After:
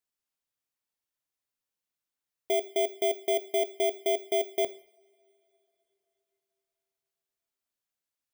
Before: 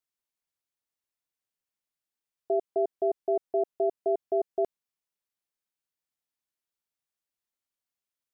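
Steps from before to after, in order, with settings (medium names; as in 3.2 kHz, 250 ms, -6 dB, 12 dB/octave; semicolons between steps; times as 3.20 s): bit-reversed sample order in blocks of 16 samples; two-slope reverb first 0.5 s, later 3.6 s, from -27 dB, DRR 12 dB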